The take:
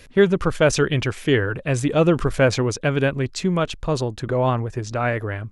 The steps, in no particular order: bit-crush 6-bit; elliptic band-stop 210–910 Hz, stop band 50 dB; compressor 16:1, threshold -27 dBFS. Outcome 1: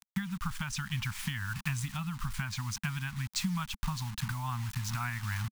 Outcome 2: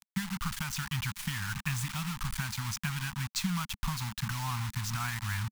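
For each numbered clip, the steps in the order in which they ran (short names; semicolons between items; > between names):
bit-crush > compressor > elliptic band-stop; compressor > bit-crush > elliptic band-stop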